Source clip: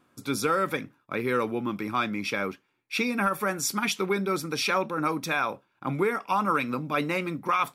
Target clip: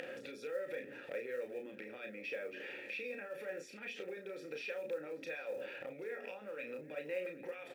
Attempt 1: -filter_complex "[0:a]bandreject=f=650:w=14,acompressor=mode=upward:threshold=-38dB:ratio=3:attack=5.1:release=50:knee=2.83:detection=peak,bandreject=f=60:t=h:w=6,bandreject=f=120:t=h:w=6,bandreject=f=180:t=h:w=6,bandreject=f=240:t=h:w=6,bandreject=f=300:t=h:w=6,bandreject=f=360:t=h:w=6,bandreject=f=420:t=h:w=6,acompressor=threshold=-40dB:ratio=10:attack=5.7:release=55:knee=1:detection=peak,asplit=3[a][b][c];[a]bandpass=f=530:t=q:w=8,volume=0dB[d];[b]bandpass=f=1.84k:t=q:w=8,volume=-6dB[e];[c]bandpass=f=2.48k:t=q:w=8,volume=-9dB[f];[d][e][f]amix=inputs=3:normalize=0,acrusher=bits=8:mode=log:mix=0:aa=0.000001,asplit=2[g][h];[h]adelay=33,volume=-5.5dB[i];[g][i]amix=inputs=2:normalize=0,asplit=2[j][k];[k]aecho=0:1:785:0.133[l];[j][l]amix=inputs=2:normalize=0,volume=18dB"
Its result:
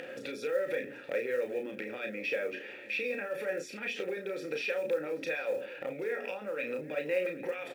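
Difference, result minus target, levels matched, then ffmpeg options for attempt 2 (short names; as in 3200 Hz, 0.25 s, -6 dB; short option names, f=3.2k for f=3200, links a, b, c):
compressor: peak gain reduction -9 dB
-filter_complex "[0:a]bandreject=f=650:w=14,acompressor=mode=upward:threshold=-38dB:ratio=3:attack=5.1:release=50:knee=2.83:detection=peak,bandreject=f=60:t=h:w=6,bandreject=f=120:t=h:w=6,bandreject=f=180:t=h:w=6,bandreject=f=240:t=h:w=6,bandreject=f=300:t=h:w=6,bandreject=f=360:t=h:w=6,bandreject=f=420:t=h:w=6,acompressor=threshold=-50dB:ratio=10:attack=5.7:release=55:knee=1:detection=peak,asplit=3[a][b][c];[a]bandpass=f=530:t=q:w=8,volume=0dB[d];[b]bandpass=f=1.84k:t=q:w=8,volume=-6dB[e];[c]bandpass=f=2.48k:t=q:w=8,volume=-9dB[f];[d][e][f]amix=inputs=3:normalize=0,acrusher=bits=8:mode=log:mix=0:aa=0.000001,asplit=2[g][h];[h]adelay=33,volume=-5.5dB[i];[g][i]amix=inputs=2:normalize=0,asplit=2[j][k];[k]aecho=0:1:785:0.133[l];[j][l]amix=inputs=2:normalize=0,volume=18dB"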